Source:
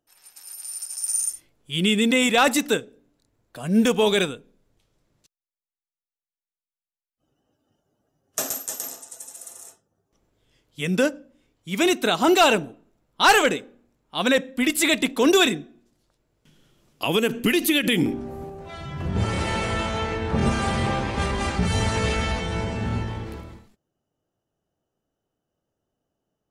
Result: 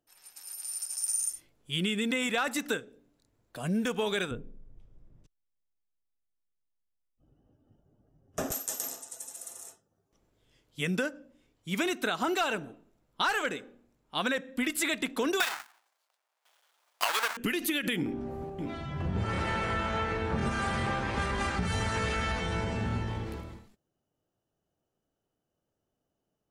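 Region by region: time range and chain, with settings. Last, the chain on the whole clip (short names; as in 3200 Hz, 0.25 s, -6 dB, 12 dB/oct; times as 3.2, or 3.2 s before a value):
4.31–8.52 tilt -4 dB/oct + notch 4200 Hz, Q 7.3
15.4–17.37 half-waves squared off + HPF 730 Hz 24 dB/oct + sample leveller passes 2
17.96–20.34 high shelf 5500 Hz -10 dB + echo 0.624 s -12.5 dB
whole clip: dynamic EQ 1500 Hz, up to +7 dB, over -39 dBFS, Q 1.6; compressor 6:1, threshold -24 dBFS; gain -3 dB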